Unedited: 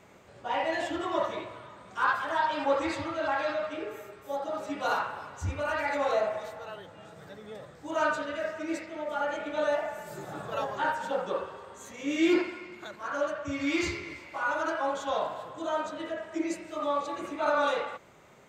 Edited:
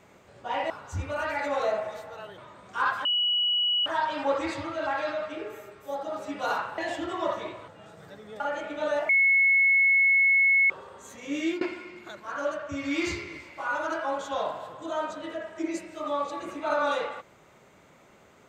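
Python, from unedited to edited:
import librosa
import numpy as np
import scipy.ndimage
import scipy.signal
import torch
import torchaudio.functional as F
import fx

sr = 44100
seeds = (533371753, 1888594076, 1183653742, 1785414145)

y = fx.edit(x, sr, fx.swap(start_s=0.7, length_s=0.9, other_s=5.19, other_length_s=1.68),
    fx.insert_tone(at_s=2.27, length_s=0.81, hz=2930.0, db=-22.0),
    fx.cut(start_s=7.59, length_s=1.57),
    fx.bleep(start_s=9.85, length_s=1.61, hz=2190.0, db=-17.5),
    fx.fade_out_to(start_s=12.07, length_s=0.3, curve='qsin', floor_db=-21.5), tone=tone)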